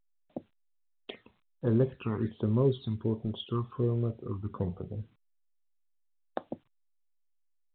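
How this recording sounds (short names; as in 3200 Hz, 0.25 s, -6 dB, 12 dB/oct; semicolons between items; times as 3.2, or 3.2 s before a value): a quantiser's noise floor 12-bit, dither none; phasing stages 12, 1.3 Hz, lowest notch 500–2600 Hz; A-law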